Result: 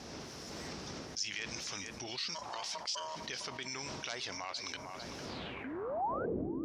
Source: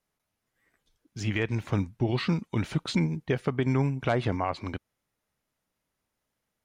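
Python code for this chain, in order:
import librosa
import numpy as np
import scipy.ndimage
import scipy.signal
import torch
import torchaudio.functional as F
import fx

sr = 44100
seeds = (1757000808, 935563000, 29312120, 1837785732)

p1 = fx.dmg_wind(x, sr, seeds[0], corner_hz=210.0, level_db=-33.0)
p2 = fx.recorder_agc(p1, sr, target_db=-18.5, rise_db_per_s=30.0, max_gain_db=30)
p3 = fx.peak_eq(p2, sr, hz=65.0, db=7.0, octaves=0.61)
p4 = 10.0 ** (-24.0 / 20.0) * np.tanh(p3 / 10.0 ** (-24.0 / 20.0))
p5 = p3 + (p4 * librosa.db_to_amplitude(-11.0))
p6 = fx.ring_mod(p5, sr, carrier_hz=790.0, at=(2.34, 3.15), fade=0.02)
p7 = fx.spec_paint(p6, sr, seeds[1], shape='rise', start_s=5.64, length_s=0.62, low_hz=240.0, high_hz=1600.0, level_db=-26.0)
p8 = p7 + fx.echo_filtered(p7, sr, ms=453, feedback_pct=77, hz=1700.0, wet_db=-13.5, dry=0)
p9 = fx.filter_sweep_bandpass(p8, sr, from_hz=5500.0, to_hz=330.0, start_s=5.25, end_s=6.42, q=5.0)
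p10 = fx.env_flatten(p9, sr, amount_pct=70)
y = p10 * librosa.db_to_amplitude(-5.5)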